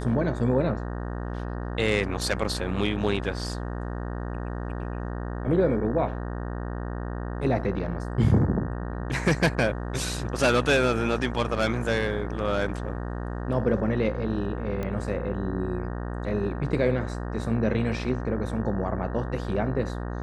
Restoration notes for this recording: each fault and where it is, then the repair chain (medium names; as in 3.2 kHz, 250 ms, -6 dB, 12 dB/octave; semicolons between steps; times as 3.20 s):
buzz 60 Hz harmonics 31 -32 dBFS
14.83 s: pop -19 dBFS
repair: de-click; de-hum 60 Hz, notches 31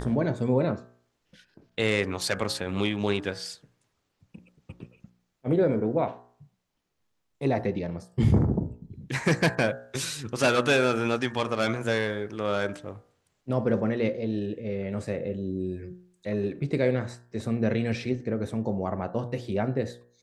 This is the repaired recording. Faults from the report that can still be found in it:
nothing left